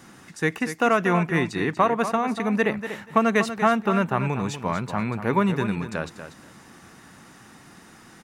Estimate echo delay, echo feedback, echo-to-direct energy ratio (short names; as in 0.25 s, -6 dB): 0.24 s, 16%, -10.5 dB